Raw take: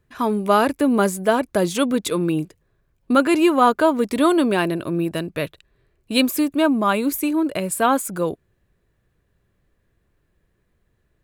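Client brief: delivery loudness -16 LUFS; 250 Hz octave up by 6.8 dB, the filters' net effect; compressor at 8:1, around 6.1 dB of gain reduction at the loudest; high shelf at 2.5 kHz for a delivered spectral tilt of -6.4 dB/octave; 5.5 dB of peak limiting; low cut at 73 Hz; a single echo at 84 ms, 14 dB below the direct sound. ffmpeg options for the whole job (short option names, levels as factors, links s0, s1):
-af "highpass=73,equalizer=f=250:t=o:g=8.5,highshelf=f=2500:g=-4,acompressor=threshold=0.224:ratio=8,alimiter=limit=0.266:level=0:latency=1,aecho=1:1:84:0.2,volume=1.58"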